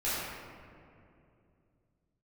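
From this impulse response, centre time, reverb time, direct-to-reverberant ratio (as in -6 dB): 141 ms, 2.6 s, -12.0 dB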